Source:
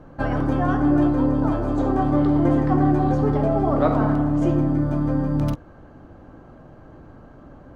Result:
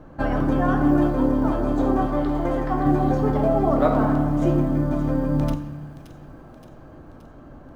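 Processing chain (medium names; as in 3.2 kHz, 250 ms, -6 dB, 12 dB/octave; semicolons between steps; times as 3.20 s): 2.06–2.86 s: peaking EQ 180 Hz -10.5 dB 1.6 oct; short-mantissa float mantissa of 6-bit; feedback echo behind a high-pass 573 ms, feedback 57%, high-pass 2.6 kHz, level -10.5 dB; on a send at -9 dB: reverberation RT60 1.1 s, pre-delay 3 ms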